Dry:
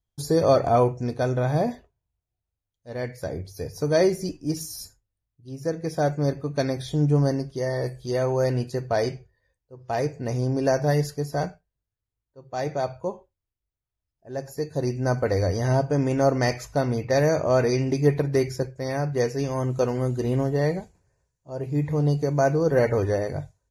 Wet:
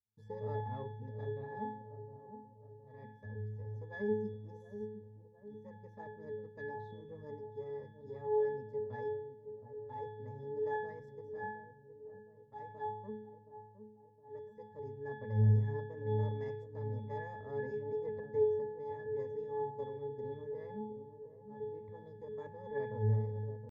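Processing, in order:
gain on one half-wave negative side −7 dB
resonances in every octave G, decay 0.75 s
delay with a low-pass on its return 715 ms, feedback 50%, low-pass 700 Hz, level −9 dB
pitch shifter +1.5 semitones
level +6 dB

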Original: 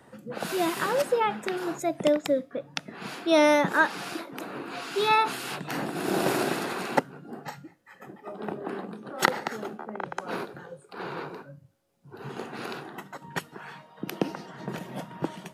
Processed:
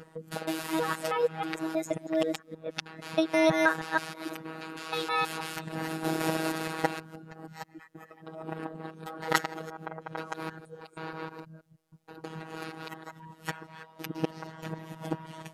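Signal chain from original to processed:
reversed piece by piece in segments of 159 ms
phases set to zero 160 Hz
level −1 dB

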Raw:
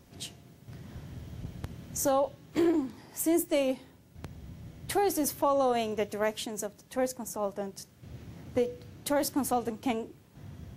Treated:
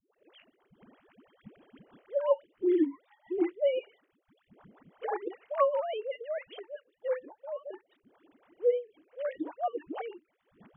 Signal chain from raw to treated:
three sine waves on the formant tracks
all-pass dispersion highs, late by 137 ms, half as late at 450 Hz
rotating-speaker cabinet horn 6 Hz

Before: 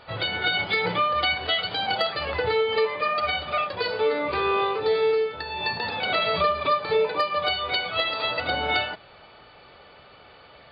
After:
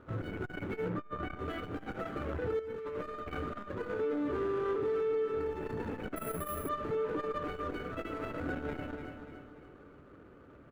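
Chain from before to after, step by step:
running median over 25 samples
repeating echo 291 ms, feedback 43%, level −11 dB
0:06.16–0:06.69: bad sample-rate conversion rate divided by 4×, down filtered, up zero stuff
drawn EQ curve 190 Hz 0 dB, 290 Hz +8 dB, 790 Hz −15 dB, 1,400 Hz +1 dB, 4,600 Hz −19 dB
brickwall limiter −26 dBFS, peak gain reduction 10.5 dB
0:00.89–0:01.39: high-shelf EQ 3,600 Hz −10 dB
0:02.59–0:03.48: compressor whose output falls as the input rises −38 dBFS, ratio −1
saturating transformer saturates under 200 Hz

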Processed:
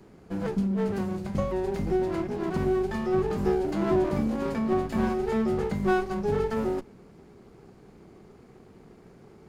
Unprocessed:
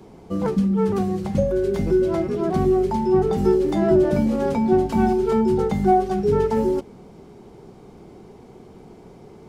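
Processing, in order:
lower of the sound and its delayed copy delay 0.42 ms
level −6.5 dB

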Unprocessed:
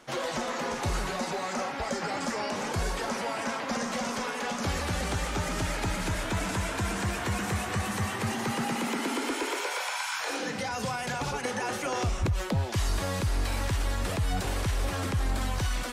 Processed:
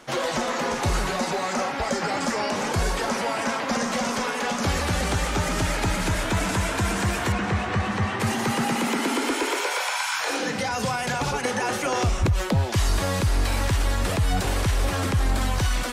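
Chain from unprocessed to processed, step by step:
0:07.32–0:08.20: Bessel low-pass filter 3,300 Hz, order 2
level +6 dB

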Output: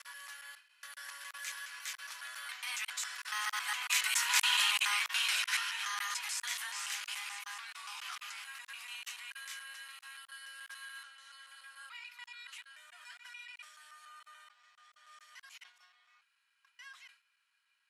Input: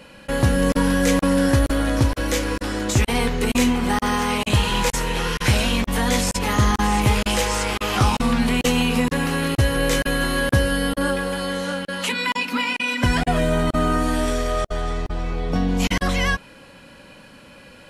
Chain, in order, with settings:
slices reordered back to front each 141 ms, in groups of 6
source passing by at 0:04.52, 7 m/s, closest 4.7 metres
inverse Chebyshev high-pass filter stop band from 370 Hz, stop band 60 dB
level that may fall only so fast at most 150 dB per second
level −2.5 dB

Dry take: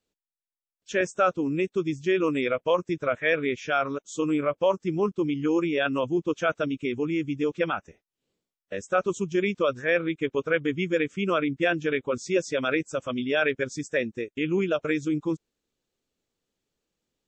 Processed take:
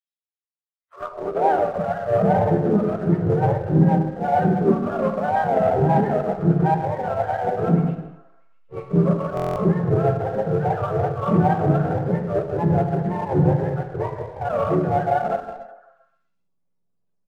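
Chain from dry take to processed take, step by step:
frequency axis turned over on the octave scale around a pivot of 470 Hz
transient designer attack −8 dB, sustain +2 dB
reverb whose tail is shaped and stops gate 420 ms falling, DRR 2 dB
leveller curve on the samples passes 1
dynamic equaliser 770 Hz, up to +5 dB, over −32 dBFS, Q 4.5
on a send: echo through a band-pass that steps 129 ms, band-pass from 300 Hz, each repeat 0.7 octaves, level −11 dB
on the sum: pitch-shifted copies added −4 semitones −10 dB, +3 semitones −11 dB
high-pass filter sweep 3,300 Hz → 160 Hz, 0:00.60–0:01.81
in parallel at −5 dB: slack as between gear wheels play −21 dBFS
on the sum: buffer that repeats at 0:09.35, samples 1,024, times 8
level −3.5 dB

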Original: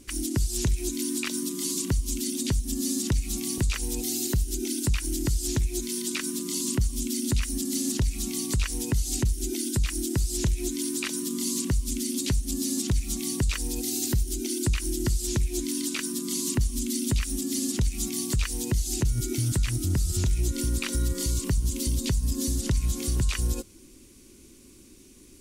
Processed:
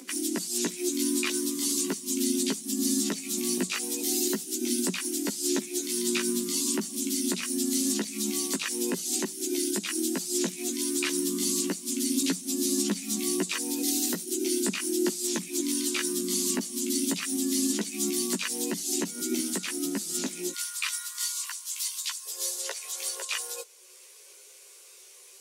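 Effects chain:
Butterworth high-pass 190 Hz 72 dB per octave, from 0:20.51 970 Hz, from 0:22.25 430 Hz
upward compression, threshold −47 dBFS
multi-voice chorus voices 6, 0.15 Hz, delay 15 ms, depth 4.6 ms
level +5 dB

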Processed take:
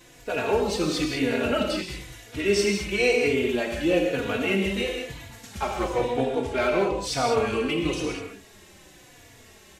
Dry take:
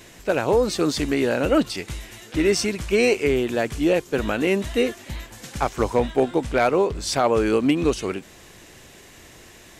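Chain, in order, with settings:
reverb whose tail is shaped and stops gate 230 ms flat, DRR 1 dB
dynamic equaliser 2,800 Hz, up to +6 dB, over −40 dBFS, Q 1.5
barber-pole flanger 3.5 ms −1 Hz
level −3.5 dB

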